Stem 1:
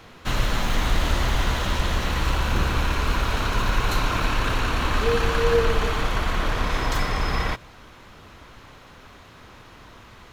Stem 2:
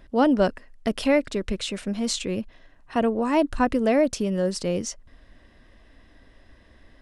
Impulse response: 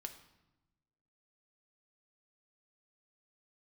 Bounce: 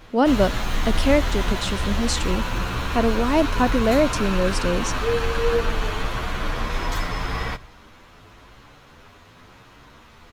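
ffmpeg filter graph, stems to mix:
-filter_complex "[0:a]asplit=2[link_01][link_02];[link_02]adelay=9.8,afreqshift=0.88[link_03];[link_01][link_03]amix=inputs=2:normalize=1,volume=-1dB,asplit=2[link_04][link_05];[link_05]volume=-6.5dB[link_06];[1:a]volume=1.5dB[link_07];[2:a]atrim=start_sample=2205[link_08];[link_06][link_08]afir=irnorm=-1:irlink=0[link_09];[link_04][link_07][link_09]amix=inputs=3:normalize=0"

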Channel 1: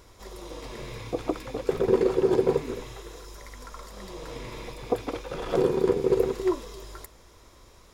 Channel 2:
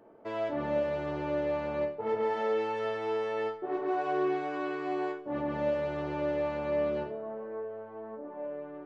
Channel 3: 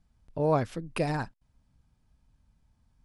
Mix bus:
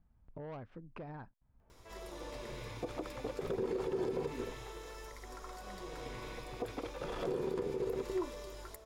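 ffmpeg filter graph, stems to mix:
ffmpeg -i stem1.wav -i stem2.wav -i stem3.wav -filter_complex "[0:a]adelay=1700,volume=-7dB[link_01];[1:a]highpass=frequency=1500:poles=1,adelay=1600,volume=-9dB[link_02];[2:a]lowpass=1600,volume=-2dB[link_03];[link_02][link_03]amix=inputs=2:normalize=0,asoftclip=type=tanh:threshold=-26dB,acompressor=threshold=-49dB:ratio=3,volume=0dB[link_04];[link_01][link_04]amix=inputs=2:normalize=0,alimiter=level_in=3.5dB:limit=-24dB:level=0:latency=1:release=61,volume=-3.5dB" out.wav

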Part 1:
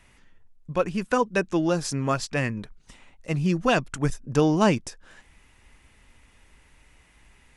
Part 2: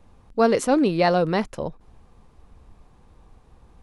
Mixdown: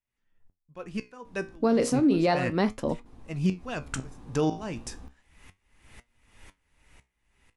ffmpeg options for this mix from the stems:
ffmpeg -i stem1.wav -i stem2.wav -filter_complex "[0:a]aeval=exprs='val(0)*pow(10,-35*if(lt(mod(-2*n/s,1),2*abs(-2)/1000),1-mod(-2*n/s,1)/(2*abs(-2)/1000),(mod(-2*n/s,1)-2*abs(-2)/1000)/(1-2*abs(-2)/1000))/20)':channel_layout=same,volume=0.5dB,asplit=2[link_01][link_02];[1:a]equalizer=frequency=270:width=3.4:gain=12,adelay=1250,volume=-2dB[link_03];[link_02]apad=whole_len=224027[link_04];[link_03][link_04]sidechaincompress=threshold=-37dB:ratio=4:attack=6.6:release=106[link_05];[link_01][link_05]amix=inputs=2:normalize=0,dynaudnorm=framelen=220:gausssize=11:maxgain=16dB,flanger=delay=8.4:depth=9.7:regen=70:speed=0.33:shape=sinusoidal,alimiter=limit=-15dB:level=0:latency=1:release=35" out.wav

